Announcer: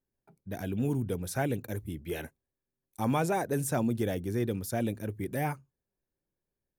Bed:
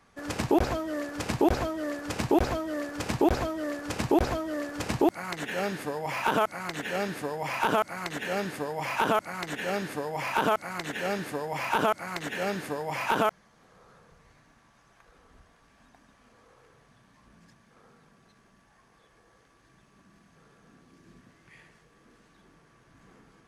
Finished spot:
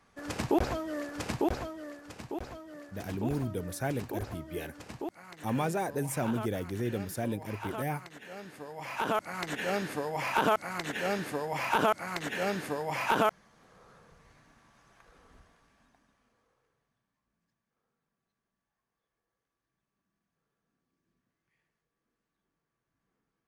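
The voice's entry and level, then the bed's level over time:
2.45 s, -2.5 dB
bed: 1.25 s -3.5 dB
2.19 s -14.5 dB
8.37 s -14.5 dB
9.41 s -1 dB
15.35 s -1 dB
17.23 s -25.5 dB

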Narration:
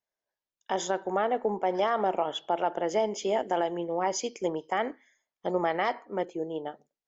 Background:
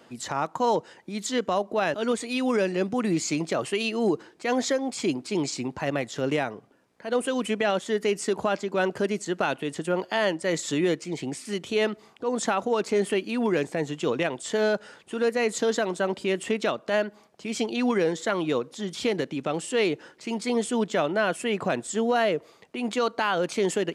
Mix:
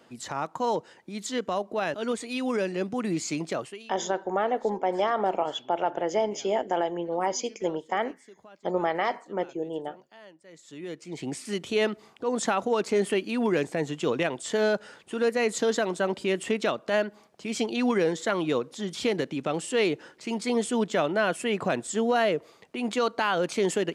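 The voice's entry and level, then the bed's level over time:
3.20 s, +1.0 dB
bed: 3.57 s -3.5 dB
3.94 s -25.5 dB
10.48 s -25.5 dB
11.30 s -0.5 dB

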